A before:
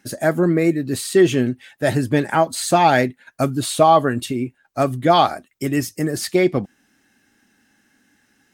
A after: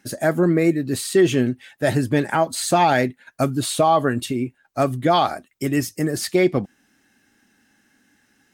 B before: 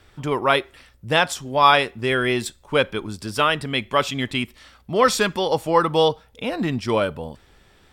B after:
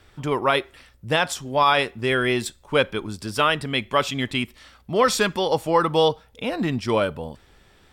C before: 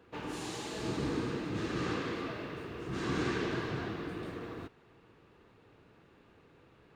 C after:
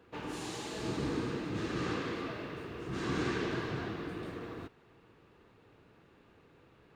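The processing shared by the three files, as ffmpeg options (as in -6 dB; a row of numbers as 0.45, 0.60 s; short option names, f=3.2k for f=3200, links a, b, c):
-af "alimiter=level_in=5.5dB:limit=-1dB:release=50:level=0:latency=1,volume=-6dB"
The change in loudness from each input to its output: -1.5, -1.5, -0.5 LU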